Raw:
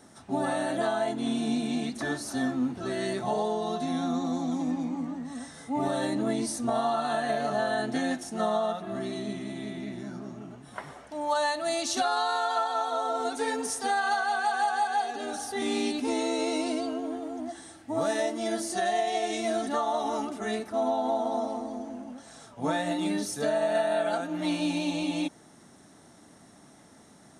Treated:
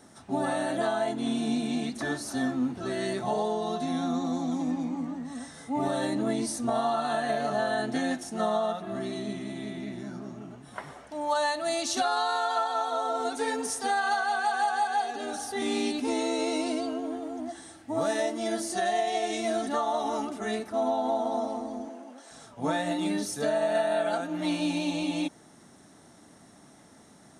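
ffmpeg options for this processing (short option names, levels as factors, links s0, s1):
-filter_complex "[0:a]asettb=1/sr,asplit=3[s0][s1][s2];[s0]atrim=end=21.894[s3];[s1]atrim=start=21.89:end=22.31,asetpts=PTS-STARTPTS,afade=t=in:d=0.004:c=qsin,afade=t=out:st=0.416:d=0.004:c=qsin,highpass=f=300:w=0.5412,highpass=f=300:w=1.3066[s4];[s2]atrim=start=22.306[s5];[s3][s4]acrossfade=d=0.004:c1=hsin:c2=qsin[s6];[s6][s5]acrossfade=d=0.004:c1=qsin:c2=hsin"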